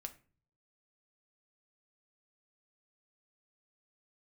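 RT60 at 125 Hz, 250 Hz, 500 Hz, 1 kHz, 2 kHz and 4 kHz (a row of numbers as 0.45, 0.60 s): 0.90, 0.60, 0.45, 0.35, 0.35, 0.25 s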